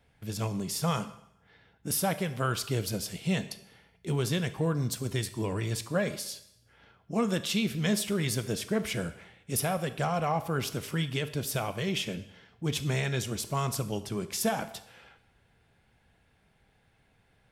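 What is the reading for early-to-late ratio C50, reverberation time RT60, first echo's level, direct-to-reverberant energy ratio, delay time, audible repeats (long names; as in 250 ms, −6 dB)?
14.0 dB, 0.75 s, no echo audible, 11.0 dB, no echo audible, no echo audible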